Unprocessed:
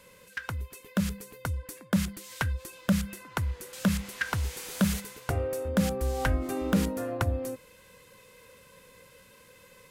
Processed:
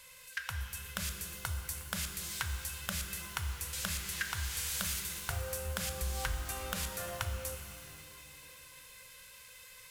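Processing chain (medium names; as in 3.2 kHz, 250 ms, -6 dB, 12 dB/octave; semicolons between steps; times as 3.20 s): amplifier tone stack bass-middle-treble 10-0-10; compression, threshold -38 dBFS, peak gain reduction 8.5 dB; pitch-shifted reverb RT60 2.5 s, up +12 st, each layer -8 dB, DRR 5 dB; trim +5 dB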